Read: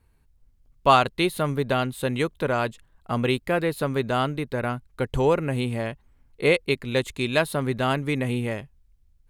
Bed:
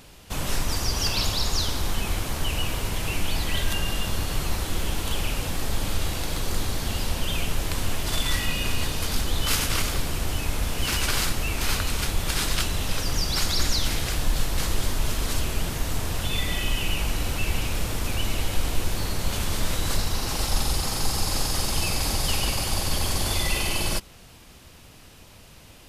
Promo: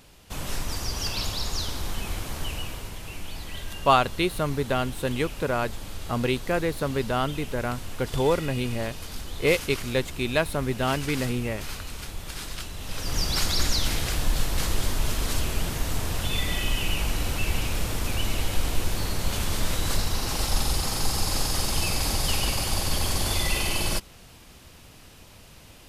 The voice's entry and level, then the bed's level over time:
3.00 s, −2.0 dB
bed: 0:02.44 −4.5 dB
0:03.00 −10.5 dB
0:12.76 −10.5 dB
0:13.20 −0.5 dB

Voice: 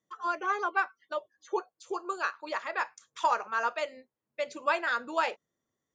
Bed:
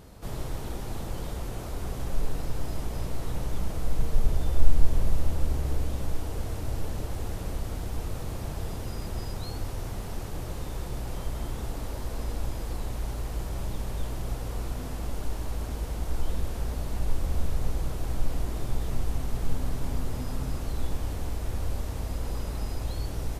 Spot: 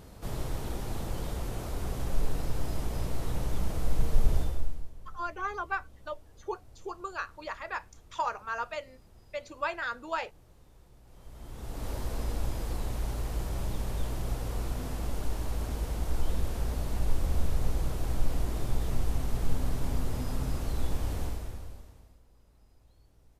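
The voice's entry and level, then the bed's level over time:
4.95 s, −4.5 dB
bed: 0:04.39 −0.5 dB
0:04.94 −23.5 dB
0:11.02 −23.5 dB
0:11.89 −0.5 dB
0:21.24 −0.5 dB
0:22.26 −30 dB

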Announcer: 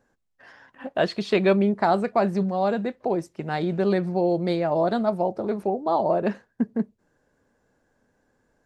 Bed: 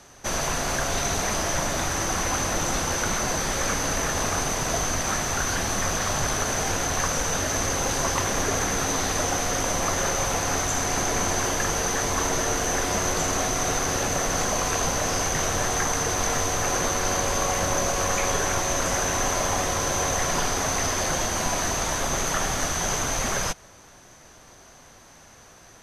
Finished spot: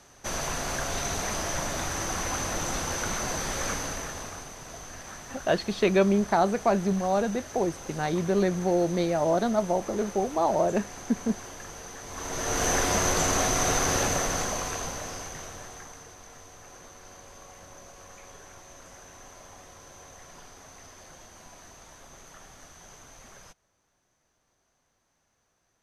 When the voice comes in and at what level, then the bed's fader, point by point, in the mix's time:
4.50 s, −2.0 dB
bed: 0:03.71 −5 dB
0:04.52 −17 dB
0:12.03 −17 dB
0:12.64 0 dB
0:14.01 0 dB
0:16.21 −24 dB

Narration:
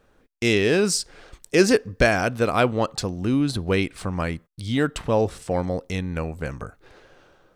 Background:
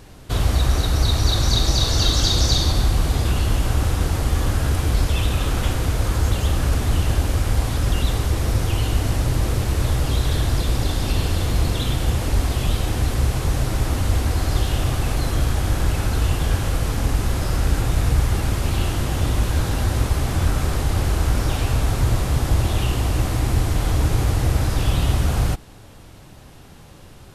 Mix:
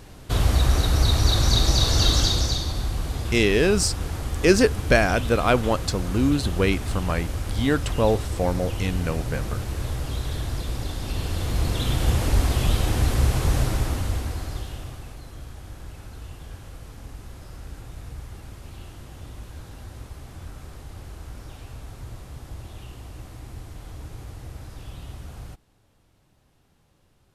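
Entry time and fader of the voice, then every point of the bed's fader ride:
2.90 s, 0.0 dB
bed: 0:02.17 −1 dB
0:02.65 −8.5 dB
0:11.01 −8.5 dB
0:12.10 −0.5 dB
0:13.60 −0.5 dB
0:15.22 −19.5 dB

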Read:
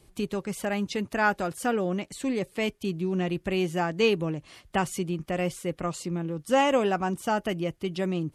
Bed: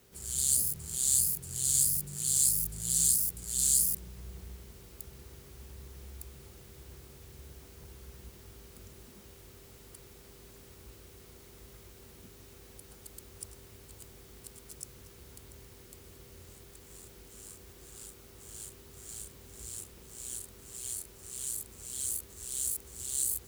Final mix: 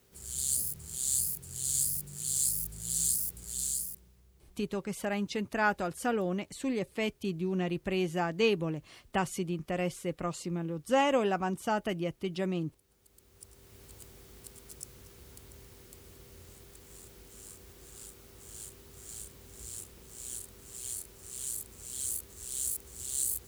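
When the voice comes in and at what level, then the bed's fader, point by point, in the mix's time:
4.40 s, −4.0 dB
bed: 0:03.50 −3.5 dB
0:04.28 −18 dB
0:12.86 −18 dB
0:13.83 −0.5 dB

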